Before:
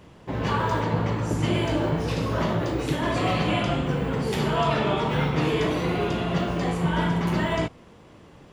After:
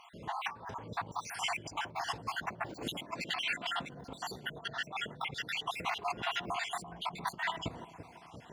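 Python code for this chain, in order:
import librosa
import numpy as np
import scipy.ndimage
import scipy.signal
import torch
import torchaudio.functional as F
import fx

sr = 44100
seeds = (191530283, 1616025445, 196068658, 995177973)

y = fx.spec_dropout(x, sr, seeds[0], share_pct=58)
y = fx.low_shelf_res(y, sr, hz=140.0, db=-6.5, q=1.5, at=(2.7, 3.92))
y = fx.over_compress(y, sr, threshold_db=-34.0, ratio=-0.5)
y = scipy.signal.sosfilt(scipy.signal.butter(2, 59.0, 'highpass', fs=sr, output='sos'), y)
y = fx.echo_bbd(y, sr, ms=340, stages=2048, feedback_pct=66, wet_db=-12)
y = y * librosa.db_to_amplitude(-4.0)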